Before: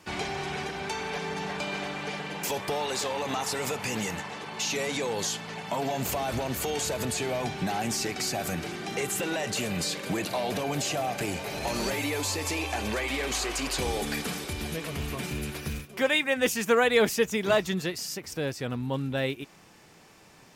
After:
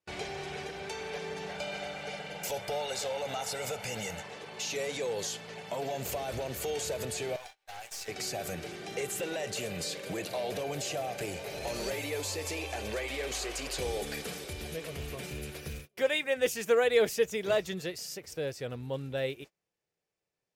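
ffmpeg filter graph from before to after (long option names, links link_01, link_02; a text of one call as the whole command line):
ffmpeg -i in.wav -filter_complex "[0:a]asettb=1/sr,asplit=3[link_01][link_02][link_03];[link_01]atrim=end=1.514[link_04];[link_02]atrim=start=1.51:end=4.23,asetpts=PTS-STARTPTS,afade=type=in:duration=0.004:curve=qsin,afade=type=out:start_time=2.716:duration=0.004:curve=qsin,bandreject=frequency=50:width_type=h:width=6,bandreject=frequency=100:width_type=h:width=6,bandreject=frequency=150:width_type=h:width=6,aecho=1:1:1.4:0.51,atrim=end_sample=119952[link_05];[link_03]atrim=start=4.226[link_06];[link_04][link_05]acrossfade=duration=0.004:curve1=hsin:curve2=qsin[link_07];[link_07][link_06]acrossfade=duration=0.004:curve1=qsin:curve2=hsin,asettb=1/sr,asplit=3[link_08][link_09][link_10];[link_08]atrim=end=7.364[link_11];[link_09]atrim=start=7.36:end=8.08,asetpts=PTS-STARTPTS,afade=type=in:duration=0.004:curve=qsin,afade=type=out:start_time=0.716:duration=0.004:curve=qsin,highpass=frequency=720:width=0.5412,highpass=frequency=720:width=1.3066,aeval=exprs='(tanh(17.8*val(0)+0.7)-tanh(0.7))/17.8':channel_layout=same,aeval=exprs='sgn(val(0))*max(abs(val(0))-0.00224,0)':channel_layout=same[link_12];[link_10]atrim=start=8.076[link_13];[link_11][link_12]acrossfade=duration=0.004:curve1=hsin:curve2=qsin[link_14];[link_14][link_13]acrossfade=duration=0.004:curve1=qsin:curve2=hsin,equalizer=frequency=250:width_type=o:width=1:gain=-7,equalizer=frequency=500:width_type=o:width=1:gain=7,equalizer=frequency=1000:width_type=o:width=1:gain=-6,agate=range=-28dB:threshold=-41dB:ratio=16:detection=peak,volume=-5.5dB" out.wav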